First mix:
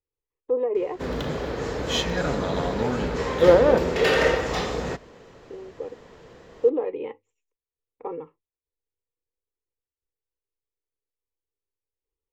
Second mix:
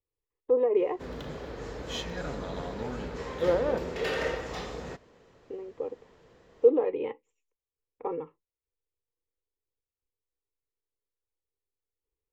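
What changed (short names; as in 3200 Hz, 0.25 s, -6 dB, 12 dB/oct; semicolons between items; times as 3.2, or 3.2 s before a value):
background -10.5 dB; master: remove notches 50/100 Hz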